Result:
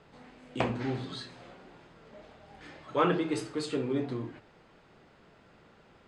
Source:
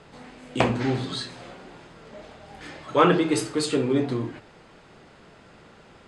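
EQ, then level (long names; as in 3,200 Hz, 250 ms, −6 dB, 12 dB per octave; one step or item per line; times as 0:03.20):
high-shelf EQ 8,100 Hz −11.5 dB
−8.0 dB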